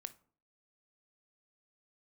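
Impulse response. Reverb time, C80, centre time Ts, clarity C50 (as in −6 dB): 0.50 s, 24.0 dB, 3 ms, 17.5 dB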